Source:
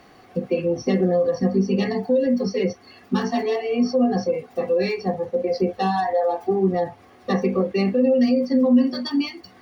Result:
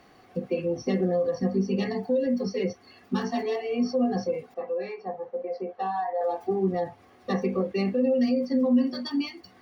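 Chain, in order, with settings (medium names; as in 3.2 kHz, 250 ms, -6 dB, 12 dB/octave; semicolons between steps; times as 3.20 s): 4.54–6.21 s: band-pass filter 890 Hz, Q 0.98; trim -5.5 dB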